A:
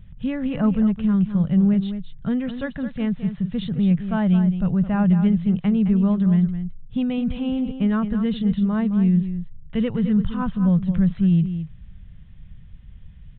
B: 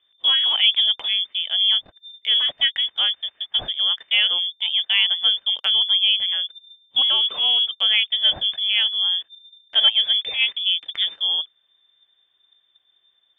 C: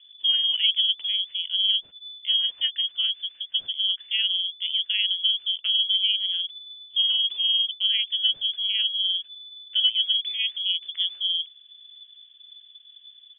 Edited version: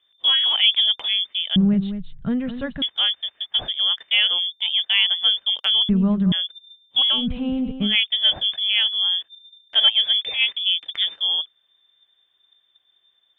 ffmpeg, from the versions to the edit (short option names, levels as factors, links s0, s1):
-filter_complex "[0:a]asplit=3[s0][s1][s2];[1:a]asplit=4[s3][s4][s5][s6];[s3]atrim=end=1.562[s7];[s0]atrim=start=1.558:end=2.822[s8];[s4]atrim=start=2.818:end=5.892[s9];[s1]atrim=start=5.888:end=6.322[s10];[s5]atrim=start=6.318:end=7.28[s11];[s2]atrim=start=7.12:end=7.96[s12];[s6]atrim=start=7.8[s13];[s7][s8]acrossfade=d=0.004:c1=hsin:c2=hsin[s14];[s14][s9]acrossfade=d=0.004:c1=hsin:c2=hsin[s15];[s15][s10]acrossfade=d=0.004:c1=hsin:c2=hsin[s16];[s16][s11]acrossfade=d=0.004:c1=hsin:c2=hsin[s17];[s17][s12]acrossfade=d=0.16:c1=tri:c2=tri[s18];[s18][s13]acrossfade=d=0.16:c1=tri:c2=tri"